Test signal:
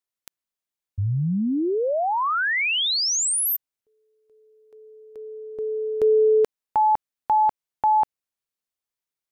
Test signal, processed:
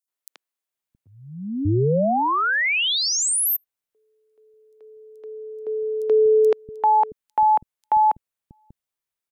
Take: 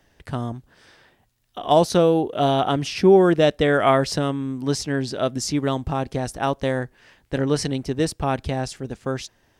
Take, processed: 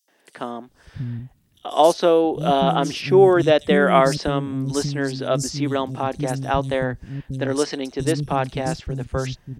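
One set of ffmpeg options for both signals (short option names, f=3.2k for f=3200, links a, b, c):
-filter_complex "[0:a]acrossover=split=240|5100[a][b][c];[b]adelay=80[d];[a]adelay=670[e];[e][d][c]amix=inputs=3:normalize=0,volume=2dB"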